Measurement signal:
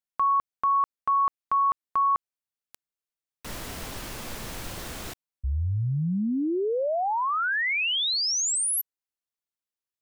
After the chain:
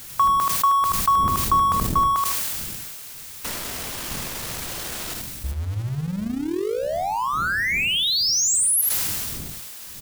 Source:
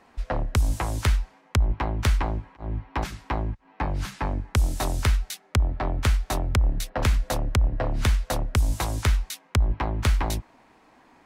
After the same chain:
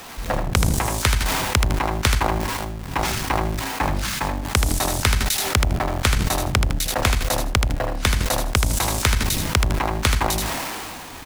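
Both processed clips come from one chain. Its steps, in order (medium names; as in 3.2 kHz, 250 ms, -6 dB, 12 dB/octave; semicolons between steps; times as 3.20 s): jump at every zero crossing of -34 dBFS; wind noise 130 Hz -36 dBFS; tilt EQ +1.5 dB/octave; on a send: feedback delay 79 ms, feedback 18%, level -6 dB; on the sum: transient shaper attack +7 dB, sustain -11 dB; decay stretcher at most 21 dB/s; trim -1 dB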